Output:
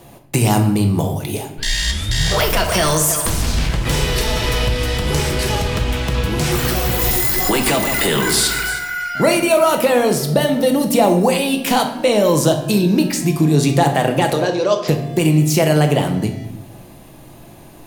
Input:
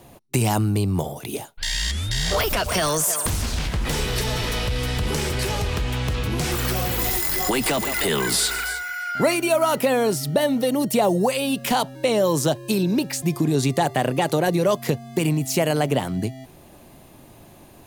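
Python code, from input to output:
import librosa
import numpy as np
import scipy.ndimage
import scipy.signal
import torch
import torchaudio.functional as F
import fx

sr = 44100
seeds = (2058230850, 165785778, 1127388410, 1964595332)

y = fx.cabinet(x, sr, low_hz=370.0, low_slope=12, high_hz=6300.0, hz=(780.0, 2000.0, 5100.0), db=(-5, -10, 5), at=(14.33, 14.88))
y = fx.room_shoebox(y, sr, seeds[0], volume_m3=270.0, walls='mixed', distance_m=0.71)
y = y * 10.0 ** (4.0 / 20.0)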